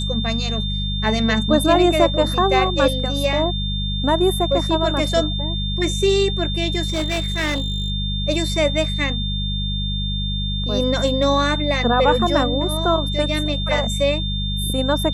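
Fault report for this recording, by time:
mains hum 50 Hz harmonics 4 −24 dBFS
whistle 3,600 Hz −26 dBFS
0:06.86–0:07.90: clipping −17.5 dBFS

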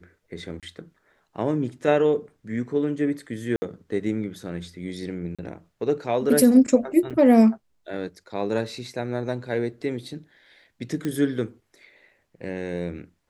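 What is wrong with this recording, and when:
0:00.60–0:00.63: drop-out 27 ms
0:03.56–0:03.62: drop-out 60 ms
0:05.35–0:05.39: drop-out 36 ms
0:07.10–0:07.11: drop-out 6.8 ms
0:11.05: click −16 dBFS

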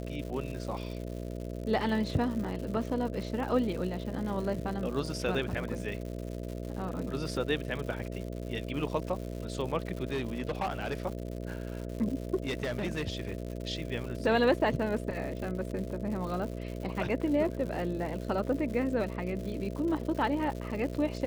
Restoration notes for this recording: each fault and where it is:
mains buzz 60 Hz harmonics 11 −38 dBFS
surface crackle 180 per second −38 dBFS
0:02.44–0:02.45: drop-out 6.2 ms
0:10.04–0:10.94: clipping −27.5 dBFS
0:12.43–0:13.35: clipping −28 dBFS

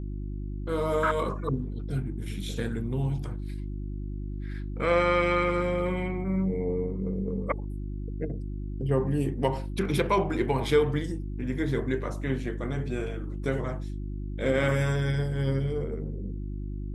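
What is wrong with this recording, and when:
mains hum 50 Hz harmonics 7 −34 dBFS

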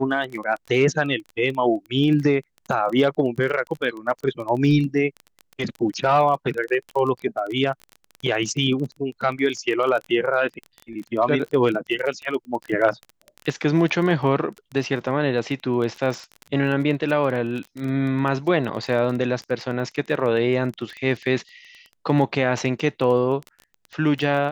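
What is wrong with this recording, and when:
surface crackle 19 per second −28 dBFS

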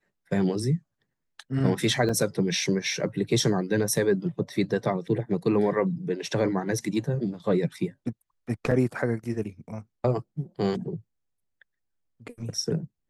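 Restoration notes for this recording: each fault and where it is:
0:02.09: drop-out 4.1 ms
0:08.71: drop-out 4.2 ms

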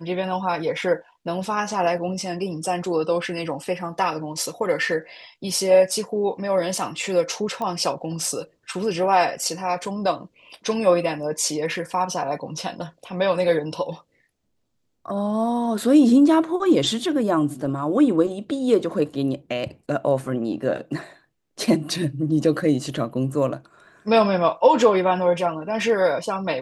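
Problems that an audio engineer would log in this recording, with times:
0:07.62: click −16 dBFS

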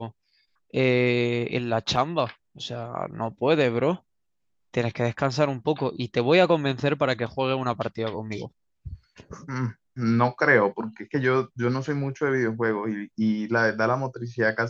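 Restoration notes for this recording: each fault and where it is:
0:01.96: drop-out 3 ms

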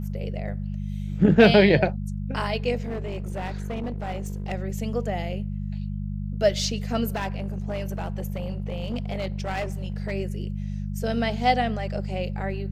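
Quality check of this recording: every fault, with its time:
mains hum 50 Hz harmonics 4 −30 dBFS
0:02.82–0:04.53: clipping −26 dBFS
0:07.14–0:10.13: clipping −24 dBFS

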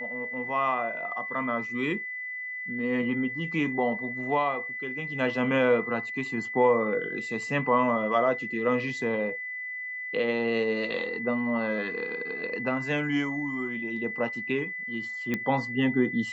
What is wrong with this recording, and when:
whistle 2,000 Hz −33 dBFS
0:15.34: click −15 dBFS

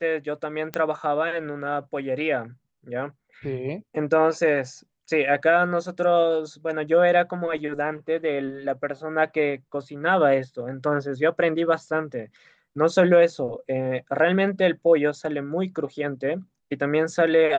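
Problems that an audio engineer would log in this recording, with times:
0:00.74: click −13 dBFS

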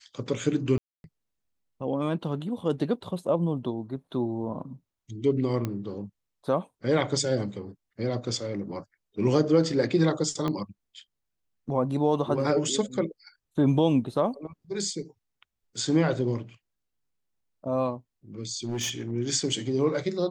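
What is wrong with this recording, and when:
0:00.78–0:01.04: drop-out 261 ms
0:05.65: click −17 dBFS
0:10.48: click −17 dBFS
0:18.64–0:19.12: clipping −26 dBFS

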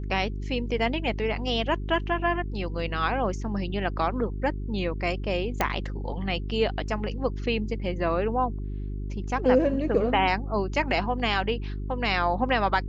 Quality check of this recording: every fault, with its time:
mains hum 50 Hz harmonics 8 −32 dBFS
0:05.61: click −9 dBFS

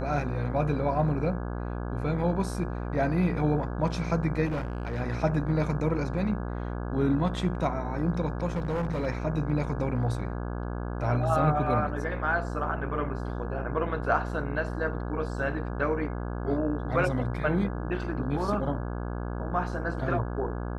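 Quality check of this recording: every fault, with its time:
mains buzz 60 Hz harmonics 28 −33 dBFS
0:04.45–0:05.00: clipping −26.5 dBFS
0:08.55–0:09.07: clipping −25 dBFS

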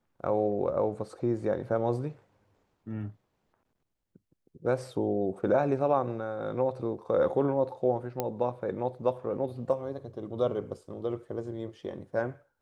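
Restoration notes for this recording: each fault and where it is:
0:08.20: click −15 dBFS

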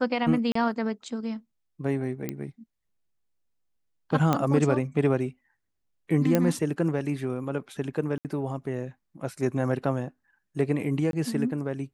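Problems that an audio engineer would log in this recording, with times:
0:00.52–0:00.55: drop-out 34 ms
0:02.29: click −16 dBFS
0:04.33: click −10 dBFS
0:06.35: click −9 dBFS
0:08.18–0:08.25: drop-out 68 ms
0:11.11–0:11.13: drop-out 22 ms

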